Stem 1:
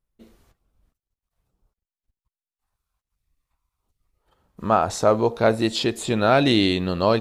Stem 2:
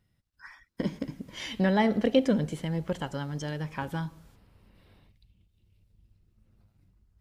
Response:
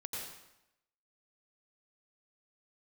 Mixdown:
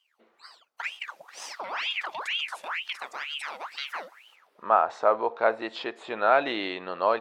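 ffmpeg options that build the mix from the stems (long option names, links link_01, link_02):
-filter_complex "[0:a]lowpass=1700,volume=1.5dB,asplit=2[link_01][link_02];[1:a]alimiter=limit=-22dB:level=0:latency=1:release=23,aeval=exprs='val(0)*sin(2*PI*1700*n/s+1700*0.8/2.1*sin(2*PI*2.1*n/s))':channel_layout=same,volume=2dB[link_03];[link_02]apad=whole_len=317851[link_04];[link_03][link_04]sidechaincompress=threshold=-35dB:ratio=8:attack=16:release=390[link_05];[link_01][link_05]amix=inputs=2:normalize=0,highpass=780"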